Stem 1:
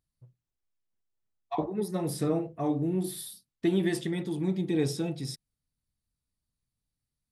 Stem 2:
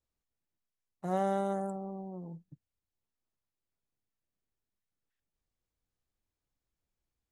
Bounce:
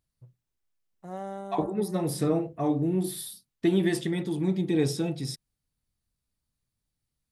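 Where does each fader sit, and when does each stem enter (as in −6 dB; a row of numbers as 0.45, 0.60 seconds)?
+2.5, −6.5 decibels; 0.00, 0.00 seconds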